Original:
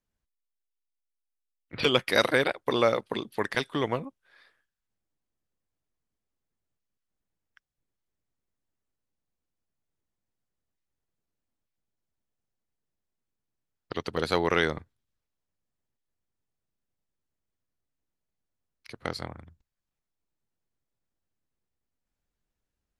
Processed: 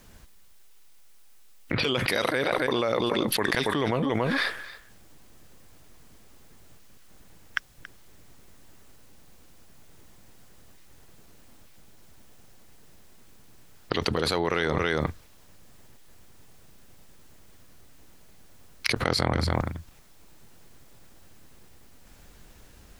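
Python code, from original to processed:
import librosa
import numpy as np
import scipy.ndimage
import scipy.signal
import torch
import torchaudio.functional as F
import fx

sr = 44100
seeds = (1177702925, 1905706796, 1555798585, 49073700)

p1 = x + fx.echo_single(x, sr, ms=279, db=-17.5, dry=0)
p2 = fx.env_flatten(p1, sr, amount_pct=100)
y = F.gain(torch.from_numpy(p2), -7.0).numpy()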